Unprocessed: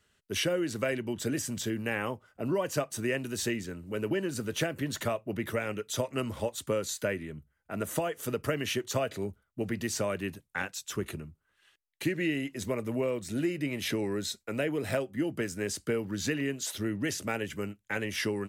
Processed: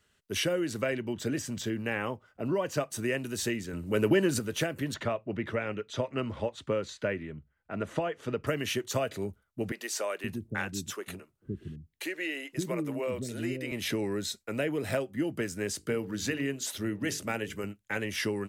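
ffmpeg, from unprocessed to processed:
-filter_complex "[0:a]asettb=1/sr,asplit=3[a][b][c];[a]atrim=end=0.814[d];[b]atrim=start=0.81:end=2.81,asetpts=PTS-STARTPTS,afade=t=in:d=0.004:c=qsin,afade=t=out:st=1.996:d=0.004:c=qsin,equalizer=f=11k:w=0.87:g=-8.5[e];[c]atrim=start=2.806[f];[d][e]acrossfade=d=0.004:c1=hsin:c2=qsin[g];[g][f]acrossfade=d=0.004:c1=qsin:c2=hsin,asettb=1/sr,asplit=3[h][i][j];[h]atrim=end=3.734[k];[i]atrim=start=3.73:end=4.39,asetpts=PTS-STARTPTS,afade=t=in:d=0.004:c=qsin,afade=t=out:st=0.656:d=0.004:c=qsin,acontrast=66[l];[j]atrim=start=4.386[m];[k][l]acrossfade=d=0.004:c1=hsin:c2=qsin[n];[n][m]acrossfade=d=0.004:c1=qsin:c2=hsin,asettb=1/sr,asplit=3[o][p][q];[o]atrim=end=4.944[r];[p]atrim=start=4.94:end=8.47,asetpts=PTS-STARTPTS,afade=t=in:d=0.004:c=qsin,afade=t=out:st=3.526:d=0.004:c=qsin,lowpass=3.5k[s];[q]atrim=start=8.466[t];[r][s]acrossfade=d=0.004:c1=hsin:c2=qsin[u];[u][t]acrossfade=d=0.004:c1=qsin:c2=hsin,asettb=1/sr,asplit=3[v][w][x];[v]atrim=end=9.724[y];[w]atrim=start=9.72:end=13.72,asetpts=PTS-STARTPTS,afade=t=in:d=0.004:c=qsin,afade=t=out:st=3.996:d=0.004:c=qsin,acrossover=split=360[z][aa];[z]adelay=520[ab];[ab][aa]amix=inputs=2:normalize=0,atrim=end_sample=176400[ac];[x]atrim=start=13.716[ad];[y][ac]acrossfade=d=0.004:c1=hsin:c2=qsin[ae];[ae][ad]acrossfade=d=0.004:c1=qsin:c2=hsin,asettb=1/sr,asplit=3[af][ag][ah];[af]atrim=end=15.764[ai];[ag]atrim=start=15.76:end=17.64,asetpts=PTS-STARTPTS,afade=t=in:d=0.004:c=qsin,afade=t=out:st=1.876:d=0.004:c=qsin,bandreject=f=50:t=h:w=6,bandreject=f=100:t=h:w=6,bandreject=f=150:t=h:w=6,bandreject=f=200:t=h:w=6,bandreject=f=250:t=h:w=6,bandreject=f=300:t=h:w=6,bandreject=f=350:t=h:w=6,bandreject=f=400:t=h:w=6,bandreject=f=450:t=h:w=6[aj];[ah]atrim=start=17.636[ak];[ai][aj]acrossfade=d=0.004:c1=hsin:c2=qsin[al];[al][ak]acrossfade=d=0.004:c1=qsin:c2=hsin"

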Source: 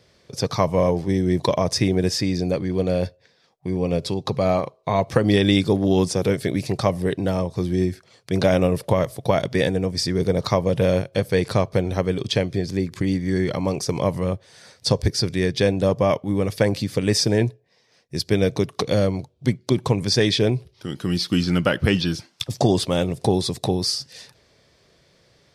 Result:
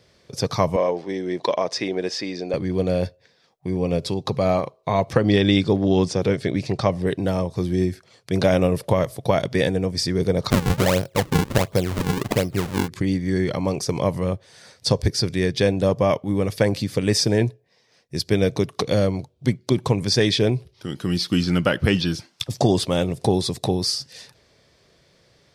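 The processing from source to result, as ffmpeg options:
-filter_complex "[0:a]asettb=1/sr,asplit=3[a][b][c];[a]atrim=end=0.764[d];[b]atrim=start=0.76:end=2.54,asetpts=PTS-STARTPTS,afade=t=in:d=0.004:c=qsin,afade=t=out:st=1.776:d=0.004:c=qsin,highpass=360,lowpass=4.8k[e];[c]atrim=start=2.536[f];[d][e]acrossfade=d=0.004:c1=hsin:c2=qsin[g];[g][f]acrossfade=d=0.004:c1=qsin:c2=hsin,asettb=1/sr,asplit=3[h][i][j];[h]atrim=end=5.134[k];[i]atrim=start=5.13:end=7.07,asetpts=PTS-STARTPTS,afade=t=in:d=0.004:c=qsin,afade=t=out:st=1.936:d=0.004:c=qsin,lowpass=5.9k[l];[j]atrim=start=7.066[m];[k][l]acrossfade=d=0.004:c1=hsin:c2=qsin[n];[n][m]acrossfade=d=0.004:c1=qsin:c2=hsin,asettb=1/sr,asplit=3[o][p][q];[o]atrim=end=10.504[r];[p]atrim=start=10.5:end=12.88,asetpts=PTS-STARTPTS,afade=t=in:d=0.004:c=qsin,afade=t=out:st=2.376:d=0.004:c=qsin,acrusher=samples=40:mix=1:aa=0.000001:lfo=1:lforange=64:lforate=1.4[s];[q]atrim=start=12.876[t];[r][s]acrossfade=d=0.004:c1=hsin:c2=qsin[u];[u][t]acrossfade=d=0.004:c1=qsin:c2=hsin"

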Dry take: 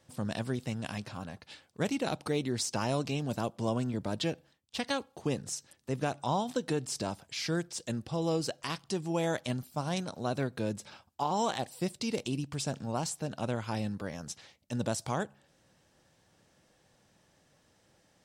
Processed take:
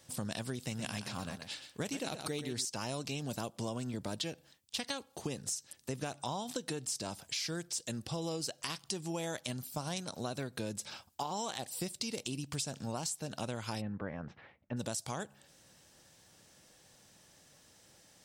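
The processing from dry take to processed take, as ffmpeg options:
-filter_complex "[0:a]asettb=1/sr,asplit=3[a][b][c];[a]atrim=end=0.584[d];[b]atrim=start=0.58:end=2.65,asetpts=PTS-STARTPTS,afade=t=in:d=0.004:c=qsin,afade=t=out:st=2.066:d=0.004:c=qsin,aecho=1:1:122:0.316,atrim=end_sample=91287[e];[c]atrim=start=2.646[f];[d][e]acrossfade=d=0.004:c1=hsin:c2=qsin[g];[g][f]acrossfade=d=0.004:c1=qsin:c2=hsin,asplit=3[h][i][j];[h]afade=t=out:st=13.8:d=0.02[k];[i]lowpass=f=2k:w=0.5412,lowpass=f=2k:w=1.3066,afade=t=in:st=13.8:d=0.02,afade=t=out:st=14.76:d=0.02[l];[j]afade=t=in:st=14.76:d=0.02[m];[k][l][m]amix=inputs=3:normalize=0,highshelf=f=3.4k:g=11.5,acompressor=threshold=-36dB:ratio=6,volume=1dB"

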